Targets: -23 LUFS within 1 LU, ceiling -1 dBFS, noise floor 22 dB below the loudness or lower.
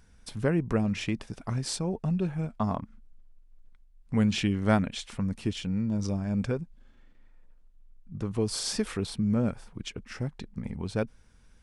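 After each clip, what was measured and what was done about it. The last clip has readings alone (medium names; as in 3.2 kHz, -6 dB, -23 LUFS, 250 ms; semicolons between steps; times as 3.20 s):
loudness -30.5 LUFS; peak level -9.0 dBFS; loudness target -23.0 LUFS
-> trim +7.5 dB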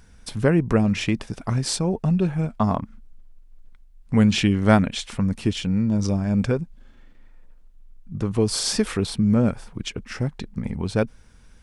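loudness -23.0 LUFS; peak level -1.5 dBFS; noise floor -50 dBFS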